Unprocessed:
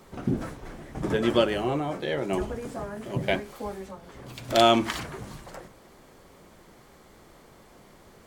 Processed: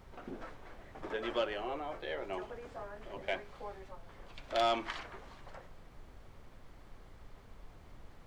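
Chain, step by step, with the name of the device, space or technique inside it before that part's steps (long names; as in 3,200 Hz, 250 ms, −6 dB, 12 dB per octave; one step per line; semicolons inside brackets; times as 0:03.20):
aircraft cabin announcement (band-pass filter 490–3,800 Hz; soft clipping −14.5 dBFS, distortion −16 dB; brown noise bed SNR 10 dB)
level −7.5 dB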